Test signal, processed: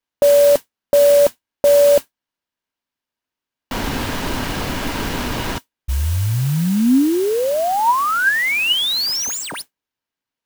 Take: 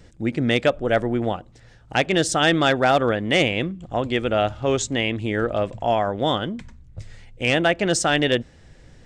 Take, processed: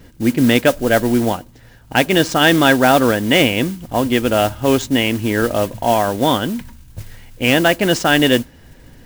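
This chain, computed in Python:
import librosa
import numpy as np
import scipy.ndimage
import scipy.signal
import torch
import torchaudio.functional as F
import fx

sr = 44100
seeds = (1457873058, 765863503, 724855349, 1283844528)

y = scipy.signal.medfilt(x, 5)
y = fx.mod_noise(y, sr, seeds[0], snr_db=15)
y = fx.small_body(y, sr, hz=(260.0, 950.0, 1600.0, 2900.0), ring_ms=45, db=7)
y = y * 10.0 ** (4.5 / 20.0)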